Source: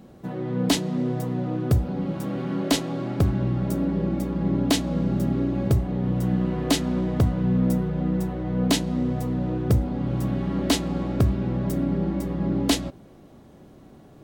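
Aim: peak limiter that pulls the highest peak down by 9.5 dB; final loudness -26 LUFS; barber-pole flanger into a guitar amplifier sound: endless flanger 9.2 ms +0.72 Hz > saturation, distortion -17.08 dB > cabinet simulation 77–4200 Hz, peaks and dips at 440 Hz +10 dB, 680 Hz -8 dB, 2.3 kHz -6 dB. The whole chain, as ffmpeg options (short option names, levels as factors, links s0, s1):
-filter_complex "[0:a]alimiter=limit=0.106:level=0:latency=1,asplit=2[s0][s1];[s1]adelay=9.2,afreqshift=0.72[s2];[s0][s2]amix=inputs=2:normalize=1,asoftclip=threshold=0.0562,highpass=77,equalizer=f=440:t=q:w=4:g=10,equalizer=f=680:t=q:w=4:g=-8,equalizer=f=2300:t=q:w=4:g=-6,lowpass=f=4200:w=0.5412,lowpass=f=4200:w=1.3066,volume=2.11"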